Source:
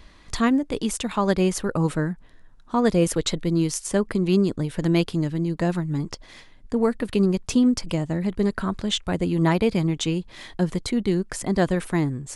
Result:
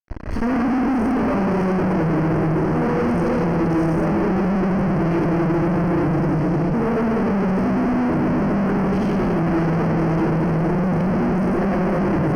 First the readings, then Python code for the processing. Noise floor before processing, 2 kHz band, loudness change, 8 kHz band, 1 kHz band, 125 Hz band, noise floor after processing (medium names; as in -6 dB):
-49 dBFS, +4.5 dB, +4.0 dB, under -15 dB, +7.5 dB, +5.0 dB, -20 dBFS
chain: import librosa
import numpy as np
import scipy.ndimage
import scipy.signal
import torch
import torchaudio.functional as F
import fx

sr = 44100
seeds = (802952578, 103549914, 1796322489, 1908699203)

y = fx.spec_steps(x, sr, hold_ms=50)
y = fx.low_shelf(y, sr, hz=490.0, db=7.5)
y = fx.rev_freeverb(y, sr, rt60_s=3.9, hf_ratio=0.35, predelay_ms=40, drr_db=-9.5)
y = fx.fuzz(y, sr, gain_db=36.0, gate_db=-32.0)
y = scipy.signal.lfilter(np.full(12, 1.0 / 12), 1.0, y)
y = fx.peak_eq(y, sr, hz=320.0, db=2.5, octaves=0.25)
y = y * 10.0 ** (-5.0 / 20.0)